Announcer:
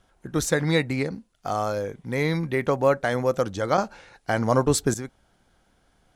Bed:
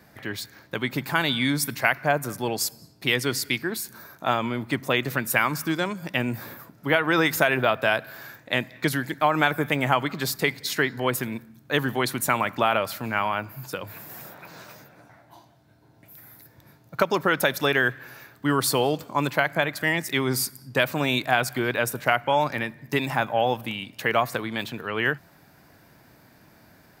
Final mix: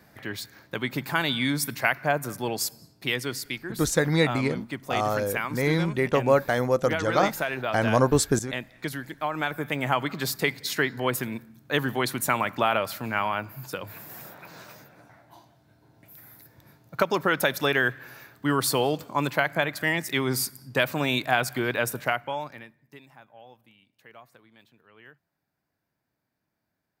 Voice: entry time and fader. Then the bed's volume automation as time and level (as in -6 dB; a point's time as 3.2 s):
3.45 s, 0.0 dB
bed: 2.76 s -2 dB
3.65 s -8 dB
9.34 s -8 dB
10.1 s -1.5 dB
21.98 s -1.5 dB
23.11 s -27 dB